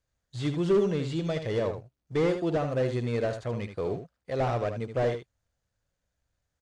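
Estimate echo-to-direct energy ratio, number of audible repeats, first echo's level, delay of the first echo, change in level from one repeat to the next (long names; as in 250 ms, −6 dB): −8.5 dB, 1, −8.5 dB, 76 ms, repeats not evenly spaced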